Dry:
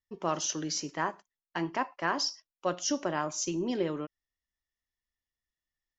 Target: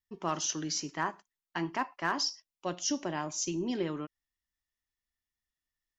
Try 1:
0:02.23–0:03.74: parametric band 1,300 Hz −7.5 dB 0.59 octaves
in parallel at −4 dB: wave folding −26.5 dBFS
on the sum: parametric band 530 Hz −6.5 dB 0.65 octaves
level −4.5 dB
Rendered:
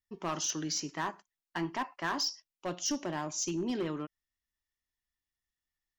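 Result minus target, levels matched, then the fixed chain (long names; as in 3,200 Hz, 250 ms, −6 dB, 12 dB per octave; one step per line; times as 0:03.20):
wave folding: distortion +21 dB
0:02.23–0:03.74: parametric band 1,300 Hz −7.5 dB 0.59 octaves
in parallel at −4 dB: wave folding −18.5 dBFS
on the sum: parametric band 530 Hz −6.5 dB 0.65 octaves
level −4.5 dB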